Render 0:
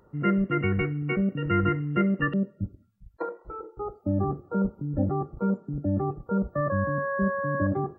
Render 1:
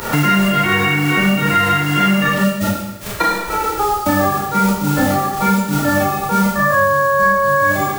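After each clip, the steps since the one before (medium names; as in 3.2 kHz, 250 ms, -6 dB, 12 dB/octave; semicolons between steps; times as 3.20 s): formants flattened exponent 0.3; Schroeder reverb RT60 0.66 s, combs from 27 ms, DRR -7 dB; three bands compressed up and down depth 100%; trim +2 dB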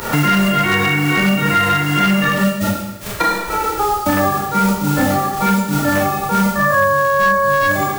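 one-sided wavefolder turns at -8.5 dBFS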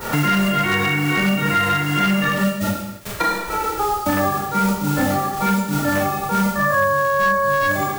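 gate with hold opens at -20 dBFS; trim -3.5 dB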